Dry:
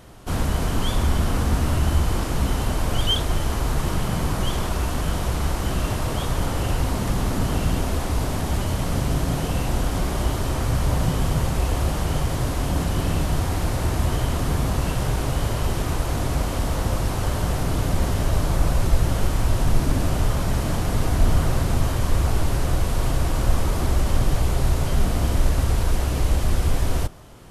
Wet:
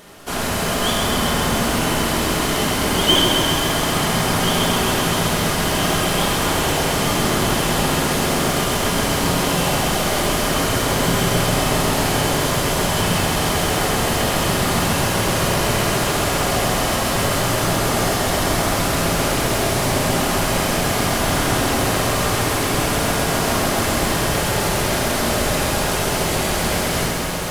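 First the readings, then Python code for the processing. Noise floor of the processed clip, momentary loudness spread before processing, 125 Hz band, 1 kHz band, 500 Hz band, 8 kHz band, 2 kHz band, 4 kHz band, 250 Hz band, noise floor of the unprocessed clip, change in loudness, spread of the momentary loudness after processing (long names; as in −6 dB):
−21 dBFS, 3 LU, −1.0 dB, +9.5 dB, +9.0 dB, +12.0 dB, +12.0 dB, +12.0 dB, +6.0 dB, −26 dBFS, +5.5 dB, 1 LU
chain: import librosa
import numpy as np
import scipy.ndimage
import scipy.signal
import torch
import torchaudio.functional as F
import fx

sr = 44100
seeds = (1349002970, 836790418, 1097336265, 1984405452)

p1 = fx.highpass(x, sr, hz=950.0, slope=6)
p2 = fx.sample_hold(p1, sr, seeds[0], rate_hz=1400.0, jitter_pct=0)
p3 = p1 + (p2 * 10.0 ** (-6.0 / 20.0))
p4 = fx.echo_diffused(p3, sr, ms=1567, feedback_pct=80, wet_db=-9.5)
p5 = fx.room_shoebox(p4, sr, seeds[1], volume_m3=490.0, walls='mixed', distance_m=1.3)
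p6 = fx.echo_crushed(p5, sr, ms=132, feedback_pct=80, bits=8, wet_db=-5.0)
y = p6 * 10.0 ** (6.5 / 20.0)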